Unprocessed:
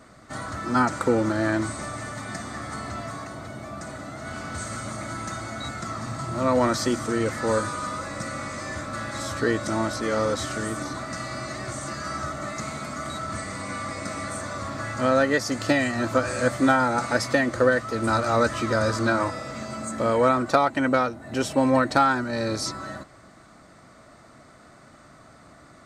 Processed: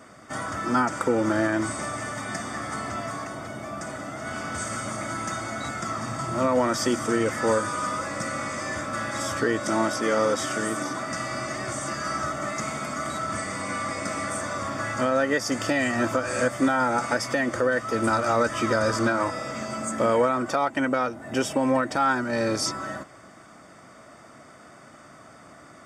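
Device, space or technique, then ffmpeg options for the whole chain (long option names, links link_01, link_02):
PA system with an anti-feedback notch: -filter_complex "[0:a]asettb=1/sr,asplit=3[link_01][link_02][link_03];[link_01]atrim=end=9.604[link_04];[link_02]atrim=start=9.6:end=11.06,asetpts=PTS-STARTPTS,afade=type=in:duration=0.004:curve=qsin,afade=type=out:start_time=1.456:duration=0.004:curve=qsin,highpass=130[link_05];[link_03]atrim=start=11.056[link_06];[link_04][link_05]acrossfade=duration=0.004:curve1=hsin:curve2=qsin[link_07];[link_07][link_06]acrossfade=duration=0.004:curve1=qsin:curve2=hsin,highpass=frequency=170:poles=1,asuperstop=centerf=4100:order=8:qfactor=6.5,alimiter=limit=-15.5dB:level=0:latency=1:release=223,volume=3dB"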